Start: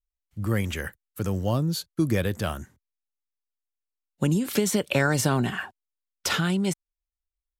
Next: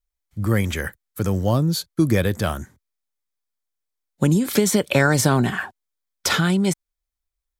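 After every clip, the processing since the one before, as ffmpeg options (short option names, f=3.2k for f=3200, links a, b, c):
-af "bandreject=f=2.8k:w=9.2,volume=5.5dB"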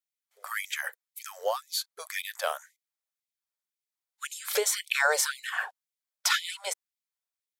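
-af "afftfilt=real='re*gte(b*sr/1024,410*pow(2000/410,0.5+0.5*sin(2*PI*1.9*pts/sr)))':imag='im*gte(b*sr/1024,410*pow(2000/410,0.5+0.5*sin(2*PI*1.9*pts/sr)))':win_size=1024:overlap=0.75,volume=-3.5dB"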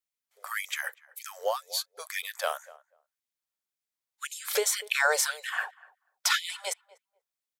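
-filter_complex "[0:a]asplit=2[a][b];[b]adelay=244,lowpass=f=970:p=1,volume=-18dB,asplit=2[c][d];[d]adelay=244,lowpass=f=970:p=1,volume=0.17[e];[a][c][e]amix=inputs=3:normalize=0"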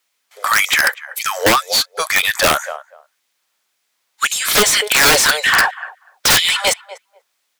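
-filter_complex "[0:a]asplit=2[a][b];[b]highpass=f=720:p=1,volume=25dB,asoftclip=type=tanh:threshold=-10.5dB[c];[a][c]amix=inputs=2:normalize=0,lowpass=f=4.6k:p=1,volume=-6dB,aeval=exprs='(mod(5.62*val(0)+1,2)-1)/5.62':c=same,volume=7.5dB"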